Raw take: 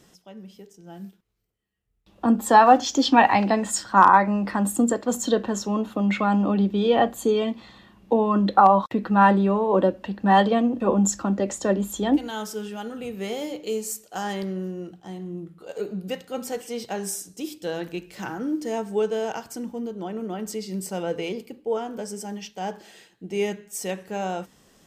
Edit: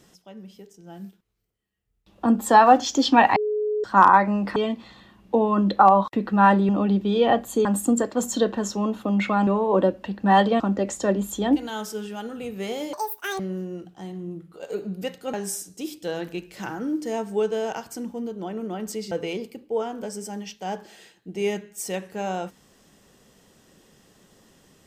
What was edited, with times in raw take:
3.36–3.84 s: bleep 423 Hz -21.5 dBFS
4.56–6.38 s: swap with 7.34–9.47 s
10.60–11.21 s: delete
13.54–14.46 s: speed 198%
16.40–16.93 s: delete
20.71–21.07 s: delete

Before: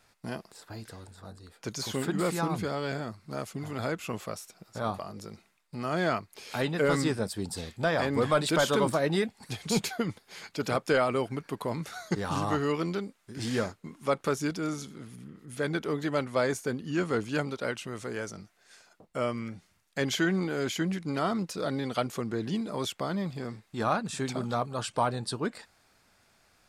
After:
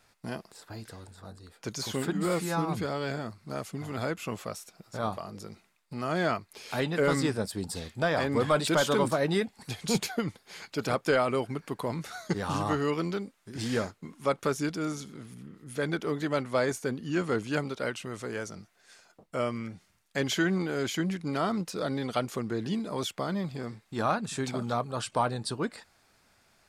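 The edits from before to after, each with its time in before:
2.13–2.50 s: stretch 1.5×

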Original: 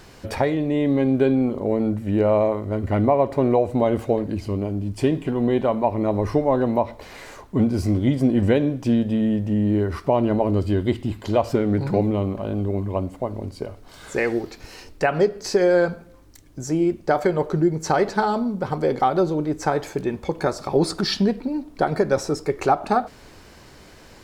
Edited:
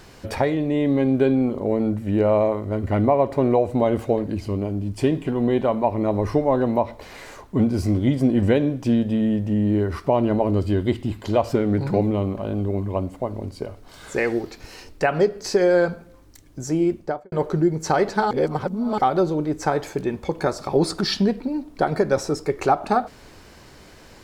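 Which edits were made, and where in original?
16.91–17.32 s: studio fade out
18.31–18.98 s: reverse

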